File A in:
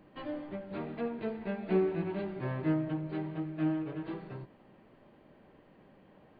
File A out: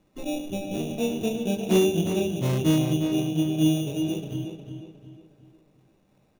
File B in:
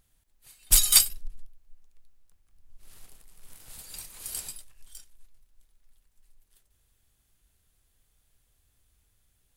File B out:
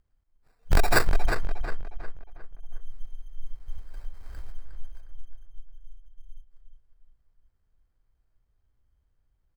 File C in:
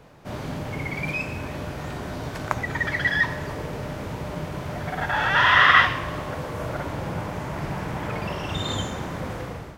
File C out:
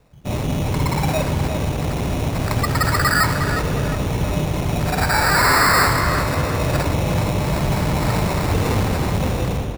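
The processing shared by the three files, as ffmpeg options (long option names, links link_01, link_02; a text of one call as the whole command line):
ffmpeg -i in.wav -filter_complex "[0:a]afwtdn=0.0158,lowshelf=frequency=94:gain=9,adynamicsmooth=sensitivity=1:basefreq=5200,aresample=16000,asoftclip=type=hard:threshold=-20dB,aresample=44100,acrusher=samples=14:mix=1:aa=0.000001,asoftclip=type=tanh:threshold=-18.5dB,asplit=2[link_01][link_02];[link_02]adelay=359,lowpass=frequency=3600:poles=1,volume=-7dB,asplit=2[link_03][link_04];[link_04]adelay=359,lowpass=frequency=3600:poles=1,volume=0.42,asplit=2[link_05][link_06];[link_06]adelay=359,lowpass=frequency=3600:poles=1,volume=0.42,asplit=2[link_07][link_08];[link_08]adelay=359,lowpass=frequency=3600:poles=1,volume=0.42,asplit=2[link_09][link_10];[link_10]adelay=359,lowpass=frequency=3600:poles=1,volume=0.42[link_11];[link_03][link_05][link_07][link_09][link_11]amix=inputs=5:normalize=0[link_12];[link_01][link_12]amix=inputs=2:normalize=0,volume=8.5dB" out.wav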